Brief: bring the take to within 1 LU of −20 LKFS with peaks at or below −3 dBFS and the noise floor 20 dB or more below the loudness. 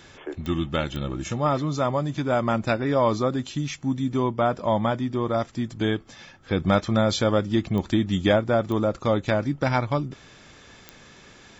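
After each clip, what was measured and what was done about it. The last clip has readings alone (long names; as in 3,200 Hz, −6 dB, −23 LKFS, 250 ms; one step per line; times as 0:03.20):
number of clicks 5; integrated loudness −24.5 LKFS; sample peak −9.5 dBFS; target loudness −20.0 LKFS
→ click removal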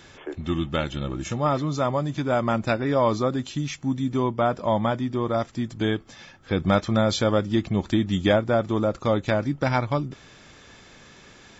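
number of clicks 0; integrated loudness −24.5 LKFS; sample peak −9.5 dBFS; target loudness −20.0 LKFS
→ level +4.5 dB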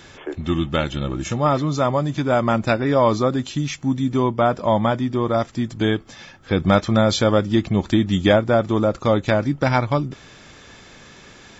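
integrated loudness −20.0 LKFS; sample peak −5.0 dBFS; background noise floor −46 dBFS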